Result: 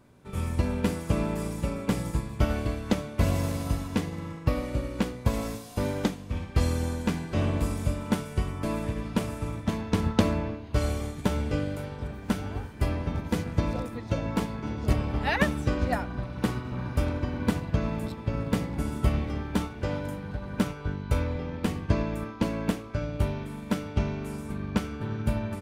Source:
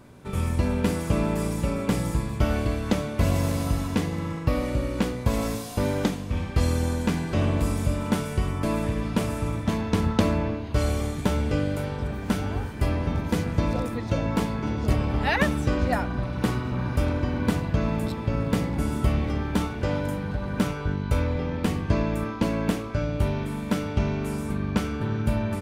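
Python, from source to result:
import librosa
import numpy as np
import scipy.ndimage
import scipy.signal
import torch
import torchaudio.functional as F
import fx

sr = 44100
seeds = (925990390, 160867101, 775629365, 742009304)

y = fx.upward_expand(x, sr, threshold_db=-33.0, expansion=1.5)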